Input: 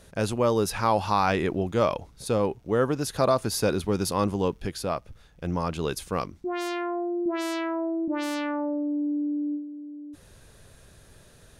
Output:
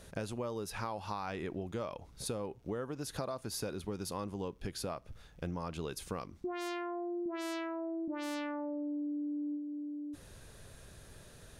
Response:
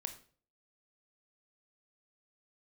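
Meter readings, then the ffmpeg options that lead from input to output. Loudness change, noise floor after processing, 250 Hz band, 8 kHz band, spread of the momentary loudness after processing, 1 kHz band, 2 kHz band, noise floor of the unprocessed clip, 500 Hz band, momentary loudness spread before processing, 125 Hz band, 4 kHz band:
−12.5 dB, −57 dBFS, −10.5 dB, −9.5 dB, 12 LU, −14.0 dB, −11.5 dB, −54 dBFS, −13.5 dB, 8 LU, −12.5 dB, −10.5 dB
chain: -filter_complex "[0:a]acompressor=threshold=-34dB:ratio=10,asplit=2[link_01][link_02];[1:a]atrim=start_sample=2205[link_03];[link_02][link_03]afir=irnorm=-1:irlink=0,volume=-14dB[link_04];[link_01][link_04]amix=inputs=2:normalize=0,volume=-2.5dB"

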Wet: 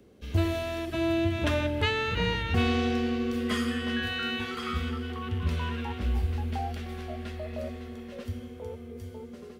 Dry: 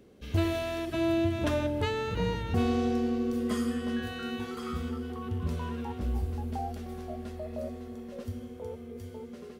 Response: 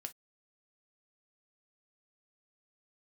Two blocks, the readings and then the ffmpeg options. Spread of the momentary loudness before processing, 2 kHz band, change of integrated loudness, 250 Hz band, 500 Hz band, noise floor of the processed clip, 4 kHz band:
13 LU, +8.0 dB, +2.5 dB, 0.0 dB, 0.0 dB, −45 dBFS, +8.0 dB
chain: -filter_complex "[0:a]equalizer=frequency=73:width_type=o:width=0.49:gain=6.5,acrossover=split=120|1700|3500[link_01][link_02][link_03][link_04];[link_03]dynaudnorm=framelen=240:gausssize=13:maxgain=14dB[link_05];[link_01][link_02][link_05][link_04]amix=inputs=4:normalize=0"

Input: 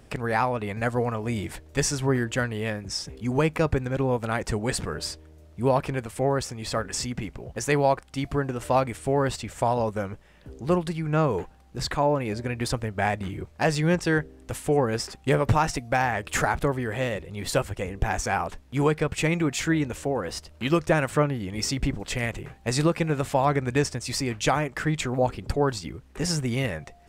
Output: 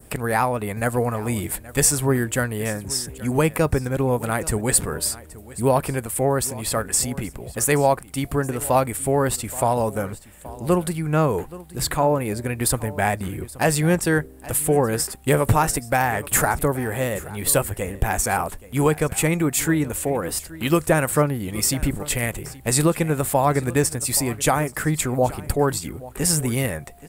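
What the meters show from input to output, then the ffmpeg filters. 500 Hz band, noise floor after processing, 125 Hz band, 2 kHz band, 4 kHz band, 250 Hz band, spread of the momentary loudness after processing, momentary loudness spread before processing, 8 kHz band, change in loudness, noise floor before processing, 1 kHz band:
+3.5 dB, −43 dBFS, +3.5 dB, +2.5 dB, +2.0 dB, +3.5 dB, 7 LU, 8 LU, +11.5 dB, +4.5 dB, −52 dBFS, +3.5 dB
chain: -filter_complex "[0:a]adynamicequalizer=threshold=0.00562:dfrequency=2900:dqfactor=1.5:tfrequency=2900:tqfactor=1.5:attack=5:release=100:ratio=0.375:range=2.5:mode=cutabove:tftype=bell,aexciter=amount=7.8:drive=3.4:freq=8200,asplit=2[link_01][link_02];[link_02]aecho=0:1:826:0.119[link_03];[link_01][link_03]amix=inputs=2:normalize=0,volume=3.5dB"

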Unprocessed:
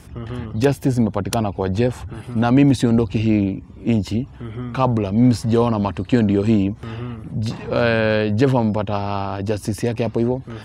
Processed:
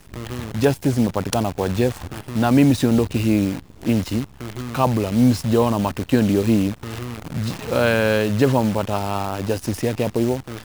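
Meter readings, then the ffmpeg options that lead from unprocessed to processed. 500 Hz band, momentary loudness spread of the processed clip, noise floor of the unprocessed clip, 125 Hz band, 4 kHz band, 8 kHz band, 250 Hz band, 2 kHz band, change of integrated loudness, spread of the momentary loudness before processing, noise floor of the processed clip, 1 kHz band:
−0.5 dB, 11 LU, −40 dBFS, −2.0 dB, +1.5 dB, +4.0 dB, −1.0 dB, +0.5 dB, −1.0 dB, 11 LU, −45 dBFS, 0.0 dB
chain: -af "lowshelf=frequency=200:gain=-2.5,acrusher=bits=6:dc=4:mix=0:aa=0.000001"

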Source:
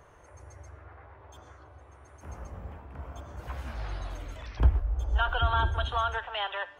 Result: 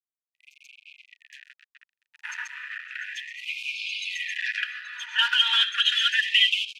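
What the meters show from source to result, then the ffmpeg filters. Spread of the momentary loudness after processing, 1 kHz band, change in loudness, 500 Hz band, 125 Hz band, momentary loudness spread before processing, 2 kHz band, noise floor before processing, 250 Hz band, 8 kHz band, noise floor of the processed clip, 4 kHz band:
16 LU, −5.0 dB, +6.5 dB, below −40 dB, below −40 dB, 23 LU, +11.5 dB, −54 dBFS, below −40 dB, can't be measured, below −85 dBFS, +18.5 dB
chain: -filter_complex "[0:a]equalizer=frequency=410:width_type=o:width=1.4:gain=-6.5,aecho=1:1:4.1:0.93,asplit=2[link_01][link_02];[link_02]aecho=0:1:828:0.224[link_03];[link_01][link_03]amix=inputs=2:normalize=0,dynaudnorm=framelen=130:gausssize=5:maxgain=10dB,aeval=exprs='sgn(val(0))*max(abs(val(0))-0.0211,0)':channel_layout=same,asplit=3[link_04][link_05][link_06];[link_04]bandpass=frequency=530:width_type=q:width=8,volume=0dB[link_07];[link_05]bandpass=frequency=1840:width_type=q:width=8,volume=-6dB[link_08];[link_06]bandpass=frequency=2480:width_type=q:width=8,volume=-9dB[link_09];[link_07][link_08][link_09]amix=inputs=3:normalize=0,bandreject=frequency=1100:width=11,acrossover=split=330|3000[link_10][link_11][link_12];[link_11]acompressor=threshold=-50dB:ratio=6[link_13];[link_10][link_13][link_12]amix=inputs=3:normalize=0,alimiter=level_in=34.5dB:limit=-1dB:release=50:level=0:latency=1,afftfilt=real='re*gte(b*sr/1024,860*pow(2200/860,0.5+0.5*sin(2*PI*0.33*pts/sr)))':imag='im*gte(b*sr/1024,860*pow(2200/860,0.5+0.5*sin(2*PI*0.33*pts/sr)))':win_size=1024:overlap=0.75,volume=-7dB"

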